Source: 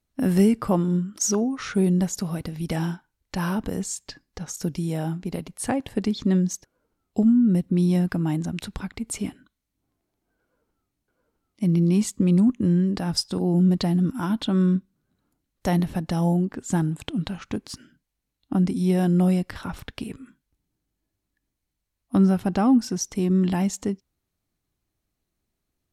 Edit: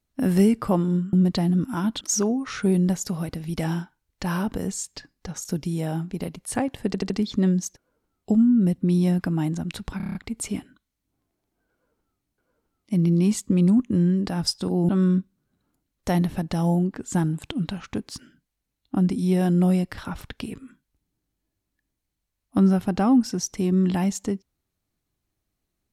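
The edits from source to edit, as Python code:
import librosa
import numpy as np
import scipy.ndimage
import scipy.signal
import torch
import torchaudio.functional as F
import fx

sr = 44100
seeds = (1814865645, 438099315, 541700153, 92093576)

y = fx.edit(x, sr, fx.stutter(start_s=5.98, slice_s=0.08, count=4),
    fx.stutter(start_s=8.85, slice_s=0.03, count=7),
    fx.move(start_s=13.59, length_s=0.88, to_s=1.13), tone=tone)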